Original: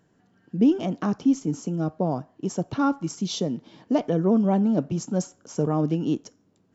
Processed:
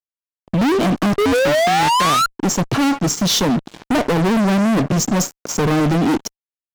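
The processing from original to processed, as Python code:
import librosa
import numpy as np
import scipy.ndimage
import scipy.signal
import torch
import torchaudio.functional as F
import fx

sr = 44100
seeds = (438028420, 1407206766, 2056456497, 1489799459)

y = fx.spec_paint(x, sr, seeds[0], shape='rise', start_s=1.18, length_s=1.08, low_hz=400.0, high_hz=1400.0, level_db=-21.0)
y = fx.fuzz(y, sr, gain_db=36.0, gate_db=-46.0)
y = y * 10.0 ** (-1.0 / 20.0)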